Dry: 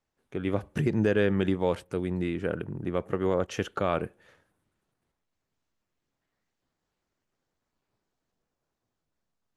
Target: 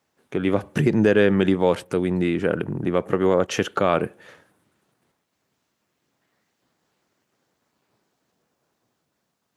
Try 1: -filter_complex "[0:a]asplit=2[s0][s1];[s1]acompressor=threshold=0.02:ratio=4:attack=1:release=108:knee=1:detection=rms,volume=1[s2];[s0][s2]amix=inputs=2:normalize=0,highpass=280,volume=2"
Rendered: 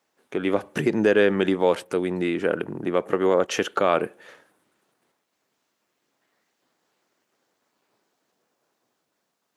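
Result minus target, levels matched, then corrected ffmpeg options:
125 Hz band -7.0 dB
-filter_complex "[0:a]asplit=2[s0][s1];[s1]acompressor=threshold=0.02:ratio=4:attack=1:release=108:knee=1:detection=rms,volume=1[s2];[s0][s2]amix=inputs=2:normalize=0,highpass=130,volume=2"

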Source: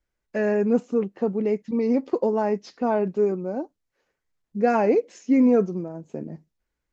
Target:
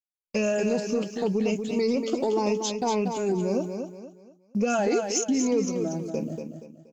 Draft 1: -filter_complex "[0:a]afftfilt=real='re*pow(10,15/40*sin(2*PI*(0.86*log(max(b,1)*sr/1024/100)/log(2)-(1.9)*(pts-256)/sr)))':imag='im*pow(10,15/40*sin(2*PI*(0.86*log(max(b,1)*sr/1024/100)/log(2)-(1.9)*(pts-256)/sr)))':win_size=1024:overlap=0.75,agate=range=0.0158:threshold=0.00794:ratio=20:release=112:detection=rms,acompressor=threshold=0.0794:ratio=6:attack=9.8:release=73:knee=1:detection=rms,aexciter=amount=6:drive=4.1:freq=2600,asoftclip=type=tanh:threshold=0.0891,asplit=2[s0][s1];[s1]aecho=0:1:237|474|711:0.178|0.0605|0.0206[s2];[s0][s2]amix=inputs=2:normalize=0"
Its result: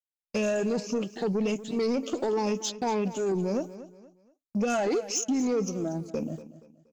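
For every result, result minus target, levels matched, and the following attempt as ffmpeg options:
saturation: distortion +16 dB; echo-to-direct -8.5 dB
-filter_complex "[0:a]afftfilt=real='re*pow(10,15/40*sin(2*PI*(0.86*log(max(b,1)*sr/1024/100)/log(2)-(1.9)*(pts-256)/sr)))':imag='im*pow(10,15/40*sin(2*PI*(0.86*log(max(b,1)*sr/1024/100)/log(2)-(1.9)*(pts-256)/sr)))':win_size=1024:overlap=0.75,agate=range=0.0158:threshold=0.00794:ratio=20:release=112:detection=rms,acompressor=threshold=0.0794:ratio=6:attack=9.8:release=73:knee=1:detection=rms,aexciter=amount=6:drive=4.1:freq=2600,asoftclip=type=tanh:threshold=0.266,asplit=2[s0][s1];[s1]aecho=0:1:237|474|711:0.178|0.0605|0.0206[s2];[s0][s2]amix=inputs=2:normalize=0"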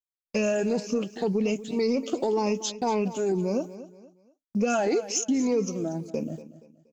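echo-to-direct -8.5 dB
-filter_complex "[0:a]afftfilt=real='re*pow(10,15/40*sin(2*PI*(0.86*log(max(b,1)*sr/1024/100)/log(2)-(1.9)*(pts-256)/sr)))':imag='im*pow(10,15/40*sin(2*PI*(0.86*log(max(b,1)*sr/1024/100)/log(2)-(1.9)*(pts-256)/sr)))':win_size=1024:overlap=0.75,agate=range=0.0158:threshold=0.00794:ratio=20:release=112:detection=rms,acompressor=threshold=0.0794:ratio=6:attack=9.8:release=73:knee=1:detection=rms,aexciter=amount=6:drive=4.1:freq=2600,asoftclip=type=tanh:threshold=0.266,asplit=2[s0][s1];[s1]aecho=0:1:237|474|711|948:0.473|0.161|0.0547|0.0186[s2];[s0][s2]amix=inputs=2:normalize=0"

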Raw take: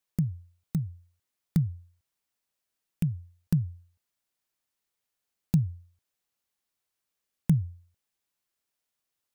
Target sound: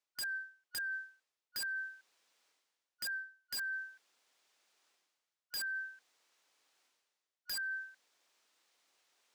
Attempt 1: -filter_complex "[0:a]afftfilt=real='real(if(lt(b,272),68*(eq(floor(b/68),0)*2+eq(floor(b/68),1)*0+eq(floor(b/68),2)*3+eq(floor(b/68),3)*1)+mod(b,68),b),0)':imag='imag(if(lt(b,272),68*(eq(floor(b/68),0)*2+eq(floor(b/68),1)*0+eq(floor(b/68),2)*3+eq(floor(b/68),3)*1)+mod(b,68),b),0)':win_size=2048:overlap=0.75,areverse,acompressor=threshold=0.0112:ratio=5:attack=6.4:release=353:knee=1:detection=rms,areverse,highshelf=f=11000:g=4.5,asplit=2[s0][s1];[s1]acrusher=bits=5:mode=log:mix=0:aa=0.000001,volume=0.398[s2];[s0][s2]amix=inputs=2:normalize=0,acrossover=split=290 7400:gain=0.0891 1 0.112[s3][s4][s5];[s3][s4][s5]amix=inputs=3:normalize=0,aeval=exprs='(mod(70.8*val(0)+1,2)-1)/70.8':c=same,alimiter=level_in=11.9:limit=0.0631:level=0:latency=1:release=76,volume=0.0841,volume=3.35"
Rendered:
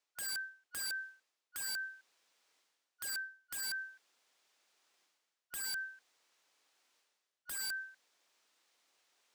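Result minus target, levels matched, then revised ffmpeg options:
compression: peak gain reduction -5 dB
-filter_complex "[0:a]afftfilt=real='real(if(lt(b,272),68*(eq(floor(b/68),0)*2+eq(floor(b/68),1)*0+eq(floor(b/68),2)*3+eq(floor(b/68),3)*1)+mod(b,68),b),0)':imag='imag(if(lt(b,272),68*(eq(floor(b/68),0)*2+eq(floor(b/68),1)*0+eq(floor(b/68),2)*3+eq(floor(b/68),3)*1)+mod(b,68),b),0)':win_size=2048:overlap=0.75,areverse,acompressor=threshold=0.00562:ratio=5:attack=6.4:release=353:knee=1:detection=rms,areverse,highshelf=f=11000:g=4.5,asplit=2[s0][s1];[s1]acrusher=bits=5:mode=log:mix=0:aa=0.000001,volume=0.398[s2];[s0][s2]amix=inputs=2:normalize=0,acrossover=split=290 7400:gain=0.0891 1 0.112[s3][s4][s5];[s3][s4][s5]amix=inputs=3:normalize=0,aeval=exprs='(mod(70.8*val(0)+1,2)-1)/70.8':c=same,alimiter=level_in=11.9:limit=0.0631:level=0:latency=1:release=76,volume=0.0841,volume=3.35"

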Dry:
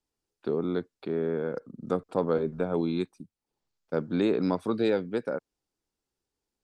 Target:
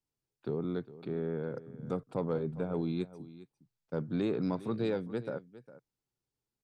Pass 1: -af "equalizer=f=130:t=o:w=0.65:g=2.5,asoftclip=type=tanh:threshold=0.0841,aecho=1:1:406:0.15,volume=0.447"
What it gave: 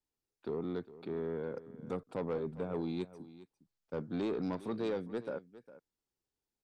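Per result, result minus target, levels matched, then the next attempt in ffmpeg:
saturation: distortion +12 dB; 125 Hz band -3.5 dB
-af "equalizer=f=130:t=o:w=0.65:g=2.5,asoftclip=type=tanh:threshold=0.237,aecho=1:1:406:0.15,volume=0.447"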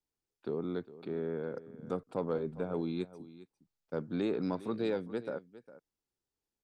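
125 Hz band -4.0 dB
-af "equalizer=f=130:t=o:w=0.65:g=13.5,asoftclip=type=tanh:threshold=0.237,aecho=1:1:406:0.15,volume=0.447"

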